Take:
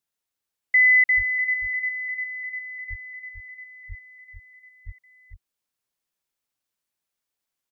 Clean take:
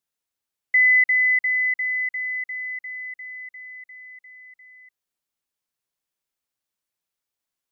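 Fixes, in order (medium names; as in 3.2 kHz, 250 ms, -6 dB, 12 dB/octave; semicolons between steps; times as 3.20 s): de-plosive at 1.16/2.89/3.88/4.85 s; inverse comb 446 ms -7 dB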